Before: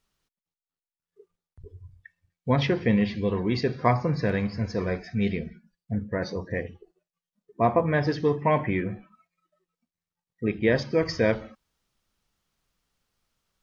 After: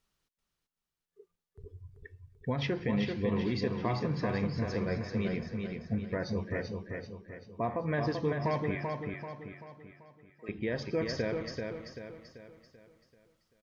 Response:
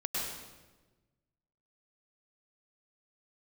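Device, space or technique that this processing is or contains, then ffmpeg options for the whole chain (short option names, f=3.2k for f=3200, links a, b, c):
stacked limiters: -filter_complex "[0:a]alimiter=limit=-14.5dB:level=0:latency=1:release=114,alimiter=limit=-19.5dB:level=0:latency=1:release=330,asettb=1/sr,asplit=3[a][b][c];[a]atrim=end=8.754[d];[b]atrim=start=8.75:end=10.49,asetpts=PTS-STARTPTS,afade=t=in:d=0.004:c=qsin,afade=t=out:st=1.736:d=0.004:c=qsin,highpass=800[e];[c]atrim=start=10.486[f];[d][e]acrossfade=d=0.004:c1=hsin:c2=qsin[g];[g][f]acrossfade=d=0.004:c1=qsin:c2=hsin,aecho=1:1:387|774|1161|1548|1935|2322:0.596|0.268|0.121|0.0543|0.0244|0.011,volume=-3dB"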